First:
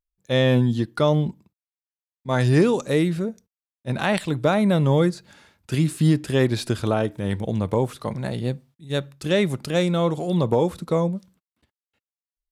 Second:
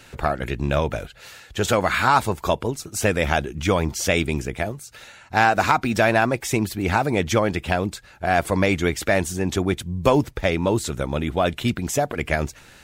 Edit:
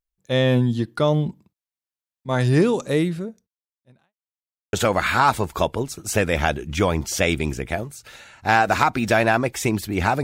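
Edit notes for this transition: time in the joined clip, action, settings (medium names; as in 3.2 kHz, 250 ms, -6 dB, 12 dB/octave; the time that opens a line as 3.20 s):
first
3.00–4.14 s: fade out quadratic
4.14–4.73 s: mute
4.73 s: go over to second from 1.61 s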